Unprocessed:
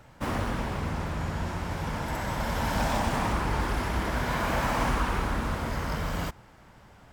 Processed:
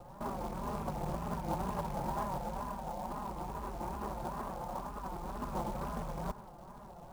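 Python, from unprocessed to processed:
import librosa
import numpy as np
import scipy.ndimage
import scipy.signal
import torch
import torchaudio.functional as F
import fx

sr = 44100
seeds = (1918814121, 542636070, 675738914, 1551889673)

y = fx.rattle_buzz(x, sr, strikes_db=-29.0, level_db=-18.0)
y = y + 0.75 * np.pad(y, (int(5.3 * sr / 1000.0), 0))[:len(y)]
y = fx.over_compress(y, sr, threshold_db=-33.0, ratio=-1.0)
y = fx.ladder_lowpass(y, sr, hz=1100.0, resonance_pct=40)
y = fx.wow_flutter(y, sr, seeds[0], rate_hz=2.1, depth_cents=150.0)
y = fx.quant_float(y, sr, bits=2)
y = F.gain(torch.from_numpy(y), 2.0).numpy()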